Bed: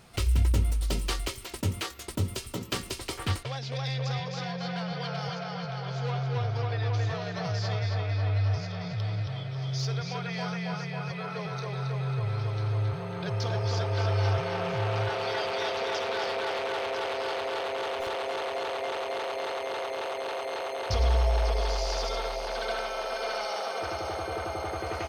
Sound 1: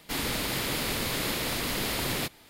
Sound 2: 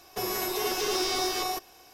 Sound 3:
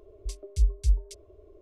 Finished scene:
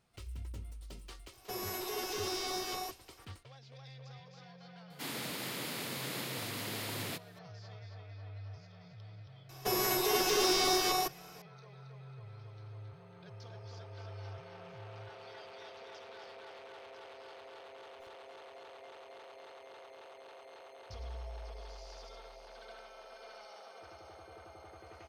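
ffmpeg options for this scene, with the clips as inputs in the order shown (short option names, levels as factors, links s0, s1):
-filter_complex "[2:a]asplit=2[s0][s1];[0:a]volume=0.1[s2];[1:a]highpass=f=120:w=0.5412,highpass=f=120:w=1.3066[s3];[s0]atrim=end=1.93,asetpts=PTS-STARTPTS,volume=0.355,afade=t=in:d=0.004:c=hsin,afade=t=out:st=1.926:d=0.004:c=hsin,adelay=1320[s4];[s3]atrim=end=2.49,asetpts=PTS-STARTPTS,volume=0.335,afade=t=in:d=0.004:c=hsin,afade=t=out:st=2.486:d=0.004:c=hsin,adelay=4900[s5];[s1]atrim=end=1.93,asetpts=PTS-STARTPTS,volume=0.944,afade=t=in:d=0.004:c=hsin,afade=t=out:st=1.926:d=0.004:c=hsin,adelay=9490[s6];[s2][s4][s5][s6]amix=inputs=4:normalize=0"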